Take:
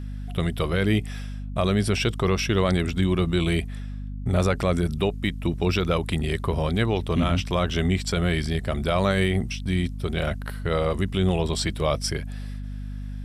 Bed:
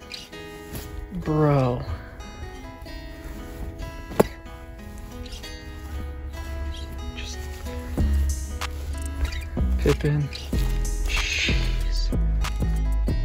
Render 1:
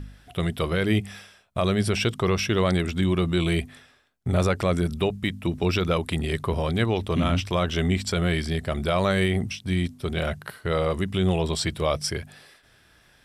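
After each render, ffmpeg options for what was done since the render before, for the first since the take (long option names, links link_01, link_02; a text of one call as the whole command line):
ffmpeg -i in.wav -af "bandreject=frequency=50:width_type=h:width=4,bandreject=frequency=100:width_type=h:width=4,bandreject=frequency=150:width_type=h:width=4,bandreject=frequency=200:width_type=h:width=4,bandreject=frequency=250:width_type=h:width=4" out.wav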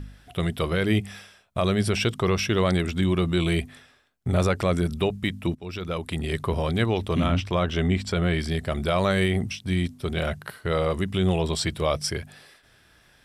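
ffmpeg -i in.wav -filter_complex "[0:a]asettb=1/sr,asplit=3[link_01][link_02][link_03];[link_01]atrim=end=7.264[link_04];[link_02]atrim=start=7.26:end=8.4,asetpts=PTS-STARTPTS,afade=type=in:duration=0.004:curve=qsin,afade=type=out:start_time=1.136:duration=0.004:curve=qsin,aemphasis=mode=reproduction:type=cd[link_05];[link_03]atrim=start=8.396[link_06];[link_04][link_05]acrossfade=duration=0.004:curve1=hsin:curve2=qsin[link_07];[link_07][link_06]acrossfade=duration=0.004:curve1=qsin:curve2=hsin,asplit=2[link_08][link_09];[link_08]atrim=end=5.55,asetpts=PTS-STARTPTS,afade=type=out:start_time=5.546:duration=0.004:curve=hsin:silence=0.105925[link_10];[link_09]atrim=start=5.55,asetpts=PTS-STARTPTS,afade=type=in:duration=0.86:silence=0.105925[link_11];[link_10][link_11]concat=n=2:v=0:a=1" out.wav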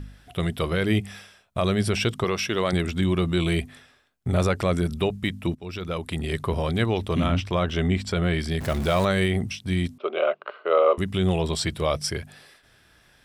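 ffmpeg -i in.wav -filter_complex "[0:a]asettb=1/sr,asplit=3[link_01][link_02][link_03];[link_01]atrim=end=2.244[link_04];[link_02]atrim=start=2.24:end=2.73,asetpts=PTS-STARTPTS,afade=type=in:duration=0.004:curve=qsin,afade=type=out:start_time=0.486:duration=0.004:curve=qsin,highpass=frequency=290:poles=1[link_05];[link_03]atrim=start=2.726[link_06];[link_04][link_05]acrossfade=duration=0.004:curve1=hsin:curve2=qsin[link_07];[link_07][link_06]acrossfade=duration=0.004:curve1=qsin:curve2=hsin,asettb=1/sr,asplit=3[link_08][link_09][link_10];[link_08]atrim=end=8.604[link_11];[link_09]atrim=start=8.6:end=9.05,asetpts=PTS-STARTPTS,afade=type=in:duration=0.004:curve=qsin,afade=type=out:start_time=0.446:duration=0.004:curve=qsin,aeval=exprs='val(0)+0.5*0.0335*sgn(val(0))':channel_layout=same[link_12];[link_10]atrim=start=9.046[link_13];[link_11][link_12]acrossfade=duration=0.004:curve1=hsin:curve2=qsin[link_14];[link_14][link_13]acrossfade=duration=0.004:curve1=qsin:curve2=hsin,asettb=1/sr,asplit=3[link_15][link_16][link_17];[link_15]atrim=end=9.984[link_18];[link_16]atrim=start=9.98:end=10.98,asetpts=PTS-STARTPTS,afade=type=in:duration=0.004:curve=qsin,afade=type=out:start_time=0.996:duration=0.004:curve=qsin,highpass=frequency=360:width=0.5412,highpass=frequency=360:width=1.3066,equalizer=frequency=400:width_type=q:width=4:gain=5,equalizer=frequency=590:width_type=q:width=4:gain=10,equalizer=frequency=1200:width_type=q:width=4:gain=10,equalizer=frequency=1800:width_type=q:width=4:gain=-10,equalizer=frequency=2700:width_type=q:width=4:gain=6,lowpass=frequency=2900:width=0.5412,lowpass=frequency=2900:width=1.3066[link_19];[link_17]atrim=start=10.976[link_20];[link_18][link_19]acrossfade=duration=0.004:curve1=hsin:curve2=qsin[link_21];[link_21][link_20]acrossfade=duration=0.004:curve1=qsin:curve2=hsin" out.wav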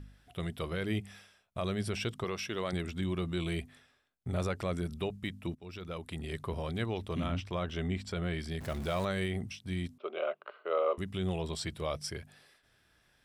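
ffmpeg -i in.wav -af "volume=-11dB" out.wav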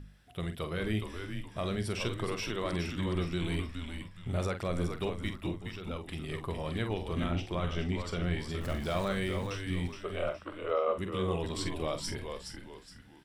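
ffmpeg -i in.wav -filter_complex "[0:a]asplit=2[link_01][link_02];[link_02]adelay=46,volume=-9dB[link_03];[link_01][link_03]amix=inputs=2:normalize=0,asplit=5[link_04][link_05][link_06][link_07][link_08];[link_05]adelay=418,afreqshift=-92,volume=-6dB[link_09];[link_06]adelay=836,afreqshift=-184,volume=-14.9dB[link_10];[link_07]adelay=1254,afreqshift=-276,volume=-23.7dB[link_11];[link_08]adelay=1672,afreqshift=-368,volume=-32.6dB[link_12];[link_04][link_09][link_10][link_11][link_12]amix=inputs=5:normalize=0" out.wav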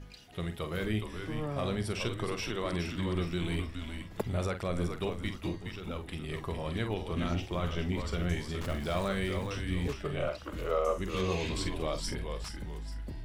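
ffmpeg -i in.wav -i bed.wav -filter_complex "[1:a]volume=-17dB[link_01];[0:a][link_01]amix=inputs=2:normalize=0" out.wav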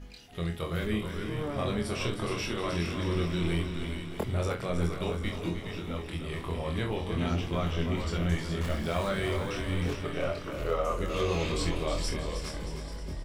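ffmpeg -i in.wav -filter_complex "[0:a]asplit=2[link_01][link_02];[link_02]adelay=24,volume=-3dB[link_03];[link_01][link_03]amix=inputs=2:normalize=0,aecho=1:1:313|626|939|1252|1565|1878|2191:0.355|0.206|0.119|0.0692|0.0402|0.0233|0.0135" out.wav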